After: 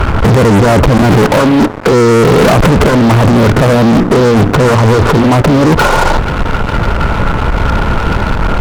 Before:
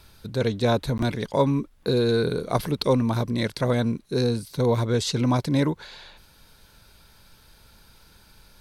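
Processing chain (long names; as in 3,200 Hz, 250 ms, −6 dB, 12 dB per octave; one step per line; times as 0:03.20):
wavefolder on the positive side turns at −18.5 dBFS
linear-phase brick-wall low-pass 1,500 Hz
compressor whose output falls as the input rises −34 dBFS, ratio −1
0:01.22–0:01.92: high-pass filter 200 Hz 12 dB per octave
0:03.91–0:05.27: mains-hum notches 60/120/180/240/300/360 Hz
four-comb reverb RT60 3.2 s, combs from 27 ms, DRR 18.5 dB
fuzz pedal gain 46 dB, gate −53 dBFS
level +8 dB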